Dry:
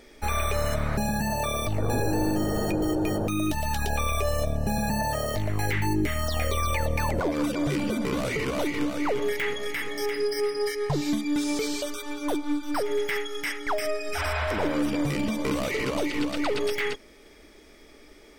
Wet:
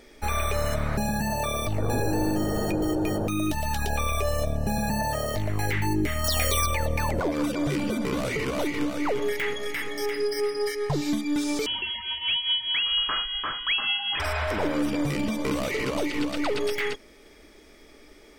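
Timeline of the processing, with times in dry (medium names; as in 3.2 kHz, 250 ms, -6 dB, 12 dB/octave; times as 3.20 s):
6.24–6.66 s: treble shelf 2.8 kHz +11.5 dB
11.66–14.20 s: frequency inversion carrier 3.3 kHz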